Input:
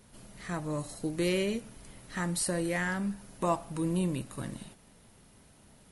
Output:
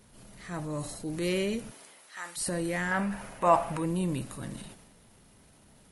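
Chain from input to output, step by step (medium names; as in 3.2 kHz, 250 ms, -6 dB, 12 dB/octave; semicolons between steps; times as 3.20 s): 1.70–2.36 s: high-pass 340 Hz -> 1.3 kHz 12 dB/octave; 2.91–3.86 s: high-order bell 1.2 kHz +10 dB 2.7 oct; transient shaper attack -5 dB, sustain +5 dB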